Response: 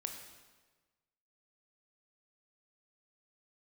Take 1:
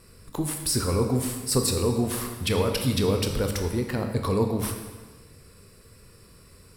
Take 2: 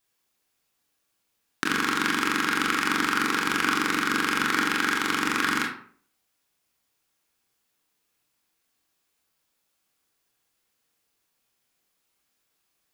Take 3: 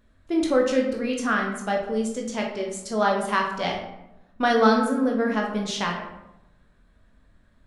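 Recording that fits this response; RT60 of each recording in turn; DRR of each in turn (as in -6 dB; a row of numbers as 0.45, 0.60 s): 1; 1.3, 0.55, 0.90 s; 4.0, -1.5, -0.5 dB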